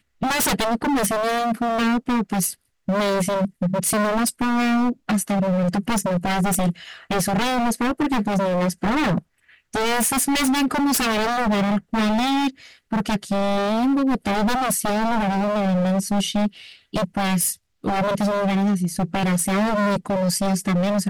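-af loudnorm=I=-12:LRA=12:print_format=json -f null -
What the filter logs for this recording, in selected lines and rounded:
"input_i" : "-21.5",
"input_tp" : "-10.9",
"input_lra" : "1.3",
"input_thresh" : "-31.6",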